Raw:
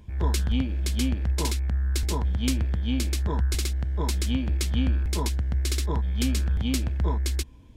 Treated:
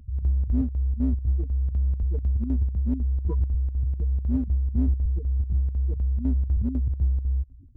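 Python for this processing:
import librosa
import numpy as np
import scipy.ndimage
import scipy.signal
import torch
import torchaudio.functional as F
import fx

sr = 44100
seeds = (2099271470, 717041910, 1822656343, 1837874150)

p1 = fx.spec_gate(x, sr, threshold_db=-10, keep='strong')
p2 = fx.chopper(p1, sr, hz=4.0, depth_pct=65, duty_pct=75)
p3 = np.clip(10.0 ** (26.5 / 20.0) * p2, -1.0, 1.0) / 10.0 ** (26.5 / 20.0)
y = p2 + (p3 * 10.0 ** (-6.0 / 20.0))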